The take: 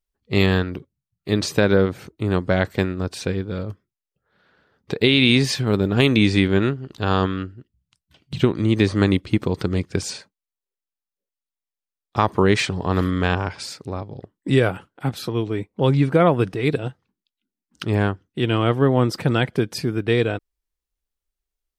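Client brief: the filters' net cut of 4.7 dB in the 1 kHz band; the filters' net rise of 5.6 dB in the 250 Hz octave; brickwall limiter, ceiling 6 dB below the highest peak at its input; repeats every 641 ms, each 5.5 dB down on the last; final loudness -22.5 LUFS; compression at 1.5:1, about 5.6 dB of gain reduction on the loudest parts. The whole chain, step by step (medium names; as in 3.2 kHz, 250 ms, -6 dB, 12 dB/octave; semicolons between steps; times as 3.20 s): peaking EQ 250 Hz +7.5 dB; peaking EQ 1 kHz -7 dB; compression 1.5:1, threshold -24 dBFS; peak limiter -11.5 dBFS; feedback delay 641 ms, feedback 53%, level -5.5 dB; trim +1.5 dB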